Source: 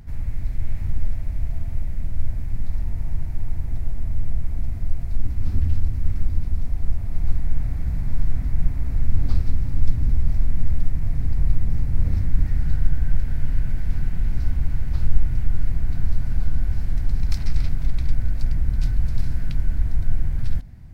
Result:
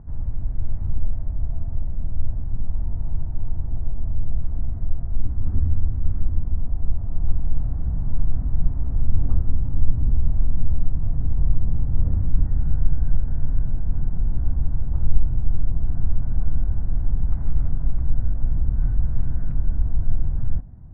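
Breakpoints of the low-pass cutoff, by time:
low-pass 24 dB/octave
1.2 kHz
from 4.37 s 1.3 kHz
from 6.40 s 1.2 kHz
from 13.64 s 1.1 kHz
from 15.87 s 1.2 kHz
from 18.75 s 1.3 kHz
from 19.54 s 1.2 kHz

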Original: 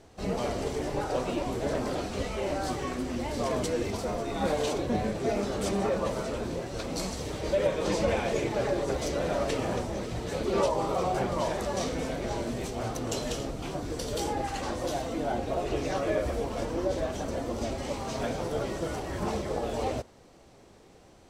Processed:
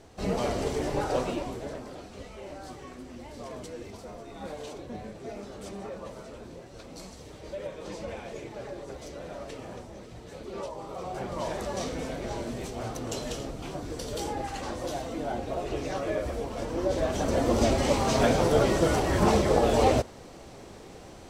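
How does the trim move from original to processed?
1.19 s +2 dB
1.87 s -11 dB
10.85 s -11 dB
11.53 s -2 dB
16.57 s -2 dB
17.53 s +9 dB

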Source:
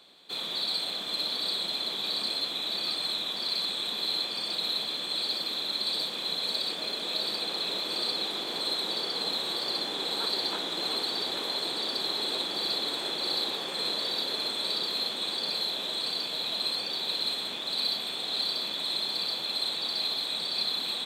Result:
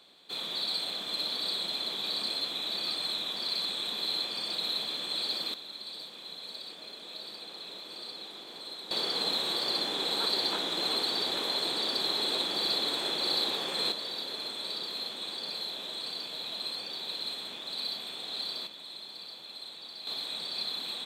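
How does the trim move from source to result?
-2 dB
from 5.54 s -12 dB
from 8.91 s +0.5 dB
from 13.92 s -6 dB
from 18.67 s -13.5 dB
from 20.07 s -5 dB

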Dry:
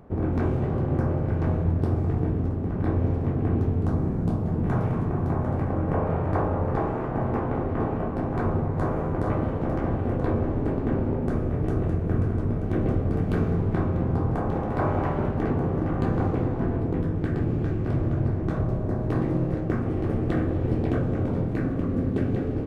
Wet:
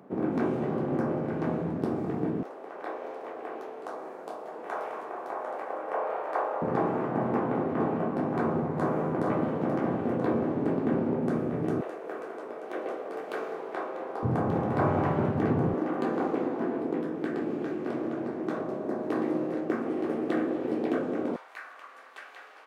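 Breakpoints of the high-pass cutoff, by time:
high-pass 24 dB/octave
180 Hz
from 2.43 s 500 Hz
from 6.62 s 160 Hz
from 11.81 s 450 Hz
from 14.23 s 110 Hz
from 15.74 s 250 Hz
from 21.36 s 990 Hz

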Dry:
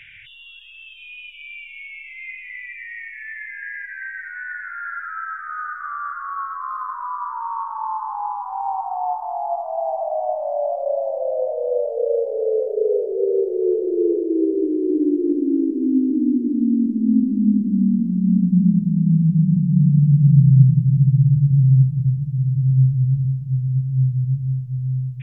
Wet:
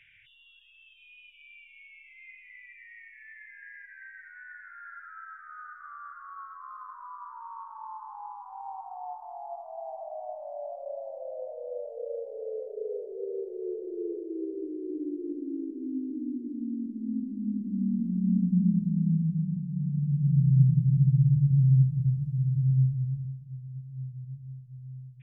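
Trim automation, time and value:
17.42 s -15.5 dB
18.11 s -8.5 dB
19.04 s -8.5 dB
19.72 s -16.5 dB
20.80 s -7 dB
22.71 s -7 dB
23.58 s -19.5 dB

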